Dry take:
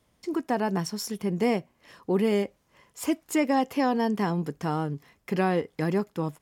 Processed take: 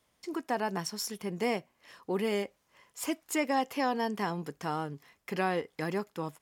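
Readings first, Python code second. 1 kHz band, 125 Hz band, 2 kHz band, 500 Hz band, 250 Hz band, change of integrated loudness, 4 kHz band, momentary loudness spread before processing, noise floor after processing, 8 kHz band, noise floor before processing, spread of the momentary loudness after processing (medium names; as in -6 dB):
-3.0 dB, -9.5 dB, -1.5 dB, -5.5 dB, -8.5 dB, -5.5 dB, -1.0 dB, 8 LU, -74 dBFS, -1.0 dB, -69 dBFS, 9 LU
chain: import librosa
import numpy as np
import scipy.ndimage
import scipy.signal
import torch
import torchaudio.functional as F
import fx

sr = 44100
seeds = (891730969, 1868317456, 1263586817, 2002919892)

y = fx.low_shelf(x, sr, hz=430.0, db=-10.0)
y = y * librosa.db_to_amplitude(-1.0)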